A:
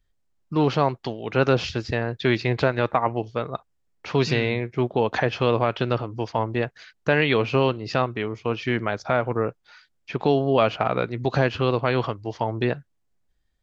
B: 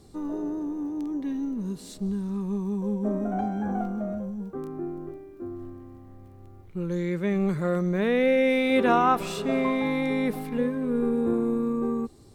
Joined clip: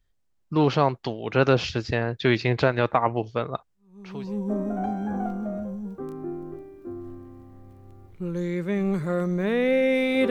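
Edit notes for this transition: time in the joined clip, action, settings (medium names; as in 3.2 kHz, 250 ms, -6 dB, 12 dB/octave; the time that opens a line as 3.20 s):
A
4.08 s: go over to B from 2.63 s, crossfade 0.70 s quadratic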